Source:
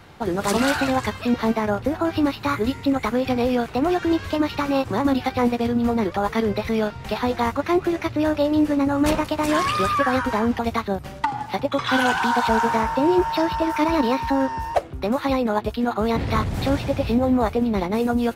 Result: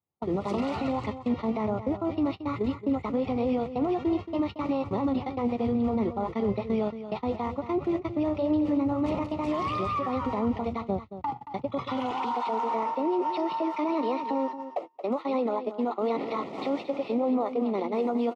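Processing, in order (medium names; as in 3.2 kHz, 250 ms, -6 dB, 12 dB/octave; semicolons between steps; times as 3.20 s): recorder AGC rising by 5.2 dB/s; gate -24 dBFS, range -44 dB; high-pass 71 Hz 24 dB/octave, from 12.11 s 270 Hz; peak limiter -18.5 dBFS, peak gain reduction 11.5 dB; Butterworth band-stop 1.6 kHz, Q 2.7; tape spacing loss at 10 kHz 26 dB; delay 226 ms -11.5 dB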